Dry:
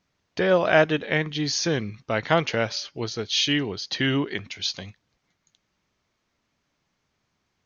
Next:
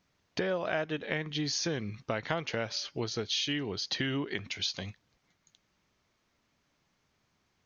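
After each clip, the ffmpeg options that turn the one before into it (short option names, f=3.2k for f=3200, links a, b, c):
-af "acompressor=threshold=-30dB:ratio=5"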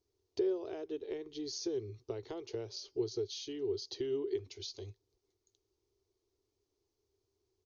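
-af "firequalizer=gain_entry='entry(110,0);entry(160,-26);entry(390,13);entry(550,-10);entry(850,-9);entry(1600,-21);entry(4500,-4)':delay=0.05:min_phase=1,volume=-5dB"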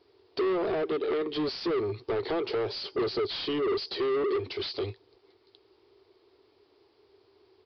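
-filter_complex "[0:a]asplit=2[a][b];[b]highpass=f=720:p=1,volume=32dB,asoftclip=type=tanh:threshold=-21.5dB[c];[a][c]amix=inputs=2:normalize=0,lowpass=f=2k:p=1,volume=-6dB,aresample=11025,aresample=44100,volume=1dB"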